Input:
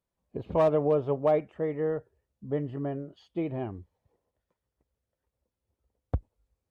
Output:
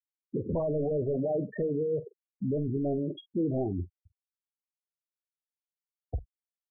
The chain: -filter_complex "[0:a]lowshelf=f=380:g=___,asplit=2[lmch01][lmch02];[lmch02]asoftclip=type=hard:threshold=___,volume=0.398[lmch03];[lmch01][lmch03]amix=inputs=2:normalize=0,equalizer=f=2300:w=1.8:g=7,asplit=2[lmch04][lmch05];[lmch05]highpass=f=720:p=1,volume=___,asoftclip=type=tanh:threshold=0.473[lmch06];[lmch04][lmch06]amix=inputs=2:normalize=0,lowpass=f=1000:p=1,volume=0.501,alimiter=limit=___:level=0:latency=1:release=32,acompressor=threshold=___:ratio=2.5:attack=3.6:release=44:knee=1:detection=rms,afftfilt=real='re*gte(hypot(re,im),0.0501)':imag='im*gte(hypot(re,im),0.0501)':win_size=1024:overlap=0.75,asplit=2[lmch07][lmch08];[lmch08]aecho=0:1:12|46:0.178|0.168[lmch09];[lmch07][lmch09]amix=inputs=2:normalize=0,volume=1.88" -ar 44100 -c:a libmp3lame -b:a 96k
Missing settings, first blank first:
10.5, 0.0596, 20, 0.158, 0.0112